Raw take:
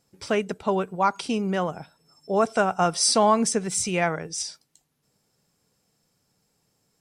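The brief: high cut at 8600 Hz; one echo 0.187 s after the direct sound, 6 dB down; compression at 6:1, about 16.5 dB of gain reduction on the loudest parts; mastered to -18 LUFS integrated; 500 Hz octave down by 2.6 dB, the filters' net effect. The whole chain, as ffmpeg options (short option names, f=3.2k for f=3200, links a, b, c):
-af "lowpass=8.6k,equalizer=f=500:t=o:g=-3.5,acompressor=threshold=-35dB:ratio=6,aecho=1:1:187:0.501,volume=19dB"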